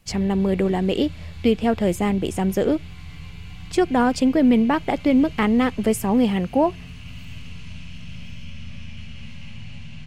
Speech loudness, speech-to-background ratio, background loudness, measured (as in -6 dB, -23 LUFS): -21.0 LUFS, 18.0 dB, -39.0 LUFS